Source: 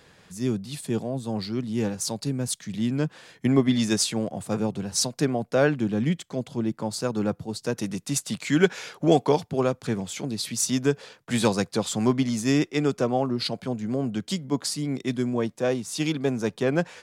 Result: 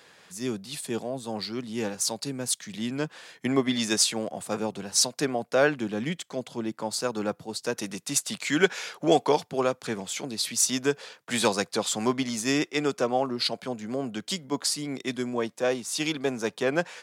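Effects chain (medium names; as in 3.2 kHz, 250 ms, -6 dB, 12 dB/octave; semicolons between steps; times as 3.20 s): high-pass 560 Hz 6 dB/octave; trim +2.5 dB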